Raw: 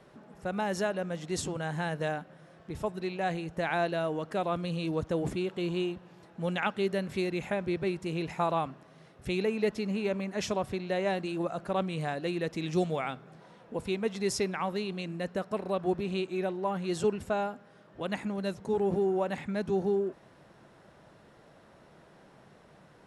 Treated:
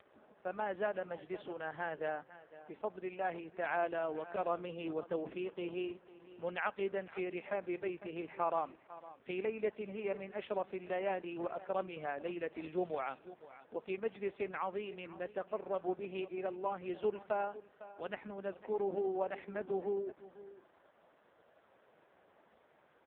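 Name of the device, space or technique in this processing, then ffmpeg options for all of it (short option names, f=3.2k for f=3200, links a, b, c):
satellite phone: -filter_complex "[0:a]asettb=1/sr,asplit=3[a][b][c];[a]atrim=end=4.364[d];[b]atrim=start=4.36:end=4.91,asetpts=PTS-STARTPTS,afade=t=in:d=0.004:c=qsin,afade=t=out:st=0.546:d=0.004:c=qsin,adynamicequalizer=threshold=0.00631:dfrequency=410:dqfactor=2:tfrequency=410:tqfactor=2:attack=5:release=100:ratio=0.375:range=2:mode=boostabove:tftype=bell[e];[c]atrim=start=4.906[f];[d][e]acrossfade=d=0.004:c1=hsin:c2=qsin[g];[g][f]acrossfade=d=0.004:c1=qsin:c2=hsin,highpass=360,lowpass=3.3k,aecho=1:1:503:0.15,volume=-4dB" -ar 8000 -c:a libopencore_amrnb -b:a 4750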